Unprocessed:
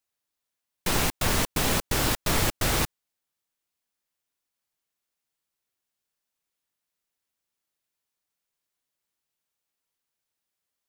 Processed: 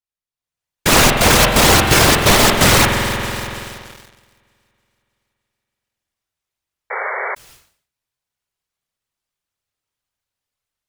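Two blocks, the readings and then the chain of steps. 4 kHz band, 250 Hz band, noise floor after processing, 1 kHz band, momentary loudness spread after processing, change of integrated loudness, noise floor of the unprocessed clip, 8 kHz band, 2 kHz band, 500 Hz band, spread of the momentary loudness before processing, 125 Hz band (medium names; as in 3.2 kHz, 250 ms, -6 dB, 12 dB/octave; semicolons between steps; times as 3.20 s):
+15.5 dB, +14.0 dB, under -85 dBFS, +16.5 dB, 16 LU, +13.5 dB, -85 dBFS, +14.0 dB, +16.5 dB, +16.0 dB, 3 LU, +13.0 dB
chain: partial rectifier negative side -12 dB; whisper effect; treble shelf 11 kHz -7.5 dB; feedback echo behind a high-pass 310 ms, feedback 55%, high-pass 2.2 kHz, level -16 dB; spring tank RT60 3.2 s, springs 47 ms, chirp 75 ms, DRR 6.5 dB; level rider gain up to 11.5 dB; bass shelf 190 Hz -6 dB; waveshaping leveller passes 3; painted sound noise, 6.90–7.35 s, 380–2300 Hz -23 dBFS; decay stretcher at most 110 dB/s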